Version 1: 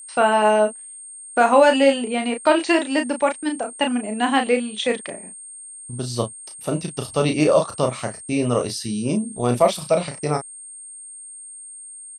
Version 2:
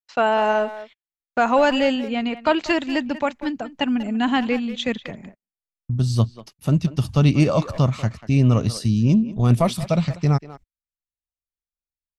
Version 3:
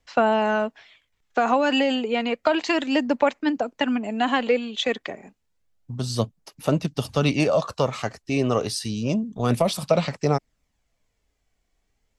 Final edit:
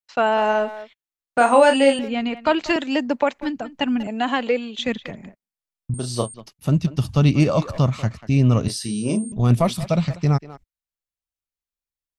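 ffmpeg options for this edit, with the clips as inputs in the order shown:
-filter_complex "[0:a]asplit=3[s0][s1][s2];[2:a]asplit=2[s3][s4];[1:a]asplit=6[s5][s6][s7][s8][s9][s10];[s5]atrim=end=1.382[s11];[s0]atrim=start=1.378:end=1.992[s12];[s6]atrim=start=1.988:end=2.762[s13];[s3]atrim=start=2.758:end=3.392[s14];[s7]atrim=start=3.388:end=4.072[s15];[s4]atrim=start=4.068:end=4.792[s16];[s8]atrim=start=4.788:end=5.942[s17];[s1]atrim=start=5.938:end=6.342[s18];[s9]atrim=start=6.338:end=8.682[s19];[s2]atrim=start=8.678:end=9.322[s20];[s10]atrim=start=9.318[s21];[s11][s12]acrossfade=d=0.004:c1=hsin:c2=hsin[s22];[s22][s13]acrossfade=d=0.004:c1=hsin:c2=hsin[s23];[s23][s14]acrossfade=d=0.004:c1=hsin:c2=hsin[s24];[s24][s15]acrossfade=d=0.004:c1=hsin:c2=hsin[s25];[s25][s16]acrossfade=d=0.004:c1=hsin:c2=hsin[s26];[s26][s17]acrossfade=d=0.004:c1=hsin:c2=hsin[s27];[s27][s18]acrossfade=d=0.004:c1=hsin:c2=hsin[s28];[s28][s19]acrossfade=d=0.004:c1=hsin:c2=hsin[s29];[s29][s20]acrossfade=d=0.004:c1=hsin:c2=hsin[s30];[s30][s21]acrossfade=d=0.004:c1=hsin:c2=hsin"

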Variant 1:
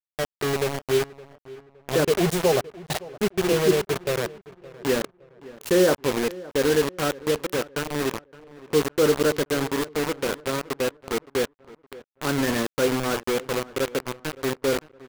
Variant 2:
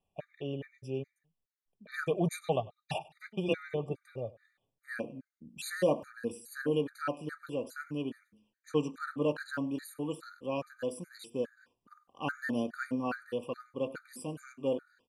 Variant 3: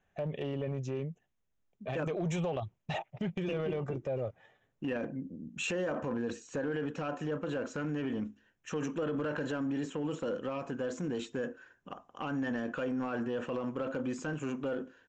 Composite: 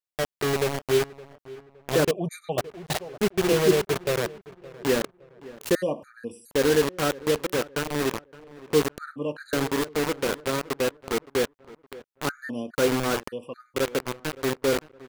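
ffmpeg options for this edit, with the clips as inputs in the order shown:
-filter_complex "[1:a]asplit=5[s0][s1][s2][s3][s4];[0:a]asplit=6[s5][s6][s7][s8][s9][s10];[s5]atrim=end=2.112[s11];[s0]atrim=start=2.108:end=2.582[s12];[s6]atrim=start=2.578:end=5.752[s13];[s1]atrim=start=5.748:end=6.512[s14];[s7]atrim=start=6.508:end=8.982[s15];[s2]atrim=start=8.978:end=9.532[s16];[s8]atrim=start=9.528:end=12.292[s17];[s3]atrim=start=12.288:end=12.752[s18];[s9]atrim=start=12.748:end=13.282[s19];[s4]atrim=start=13.278:end=13.762[s20];[s10]atrim=start=13.758[s21];[s11][s12]acrossfade=d=0.004:c1=hsin:c2=hsin[s22];[s22][s13]acrossfade=d=0.004:c1=hsin:c2=hsin[s23];[s23][s14]acrossfade=d=0.004:c1=hsin:c2=hsin[s24];[s24][s15]acrossfade=d=0.004:c1=hsin:c2=hsin[s25];[s25][s16]acrossfade=d=0.004:c1=hsin:c2=hsin[s26];[s26][s17]acrossfade=d=0.004:c1=hsin:c2=hsin[s27];[s27][s18]acrossfade=d=0.004:c1=hsin:c2=hsin[s28];[s28][s19]acrossfade=d=0.004:c1=hsin:c2=hsin[s29];[s29][s20]acrossfade=d=0.004:c1=hsin:c2=hsin[s30];[s30][s21]acrossfade=d=0.004:c1=hsin:c2=hsin"

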